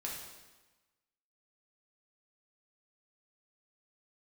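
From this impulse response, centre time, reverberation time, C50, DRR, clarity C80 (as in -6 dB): 58 ms, 1.2 s, 2.0 dB, -3.5 dB, 5.0 dB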